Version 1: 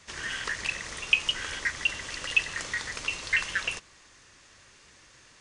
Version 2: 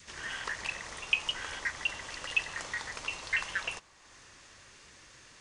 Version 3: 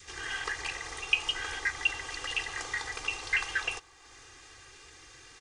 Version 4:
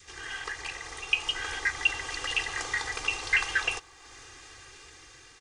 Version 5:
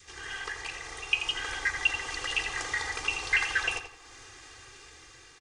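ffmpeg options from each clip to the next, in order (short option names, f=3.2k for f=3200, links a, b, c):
-af "acompressor=mode=upward:threshold=-41dB:ratio=2.5,adynamicequalizer=threshold=0.00355:dfrequency=830:dqfactor=1.3:tfrequency=830:tqfactor=1.3:attack=5:release=100:ratio=0.375:range=4:mode=boostabove:tftype=bell,volume=-6dB"
-af "aecho=1:1:2.5:0.92"
-af "dynaudnorm=f=530:g=5:m=6dB,volume=-2dB"
-filter_complex "[0:a]asplit=2[a][b];[b]adelay=84,lowpass=f=3.5k:p=1,volume=-7.5dB,asplit=2[c][d];[d]adelay=84,lowpass=f=3.5k:p=1,volume=0.35,asplit=2[e][f];[f]adelay=84,lowpass=f=3.5k:p=1,volume=0.35,asplit=2[g][h];[h]adelay=84,lowpass=f=3.5k:p=1,volume=0.35[i];[a][c][e][g][i]amix=inputs=5:normalize=0,volume=-1dB"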